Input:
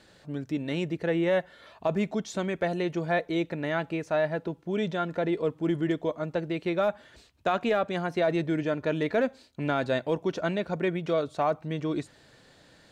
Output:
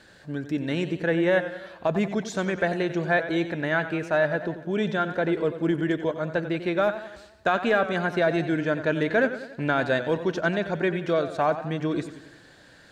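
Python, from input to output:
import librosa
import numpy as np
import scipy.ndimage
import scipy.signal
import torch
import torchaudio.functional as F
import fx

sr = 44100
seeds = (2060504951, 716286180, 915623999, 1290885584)

y = fx.peak_eq(x, sr, hz=1600.0, db=10.5, octaves=0.2)
y = fx.echo_warbled(y, sr, ms=92, feedback_pct=53, rate_hz=2.8, cents=89, wet_db=-12.0)
y = F.gain(torch.from_numpy(y), 2.5).numpy()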